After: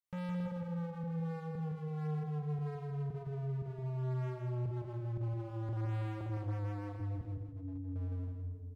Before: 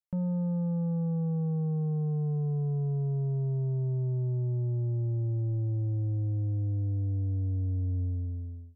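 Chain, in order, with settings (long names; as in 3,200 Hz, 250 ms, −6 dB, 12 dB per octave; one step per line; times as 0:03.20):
reverb reduction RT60 1.6 s
0:04.80–0:05.57: mains-hum notches 50/100/150/200/250/300/350 Hz
parametric band 110 Hz +12.5 dB 0.24 octaves
fake sidechain pumping 116 BPM, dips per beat 1, −16 dB, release 113 ms
0:07.21–0:07.96: tuned comb filter 140 Hz, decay 0.38 s, harmonics all, mix 80%
spring reverb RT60 2 s, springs 39/55 ms, chirp 70 ms, DRR 2 dB
hard clipping −39.5 dBFS, distortion −2 dB
repeating echo 163 ms, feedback 36%, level −5 dB
level +1 dB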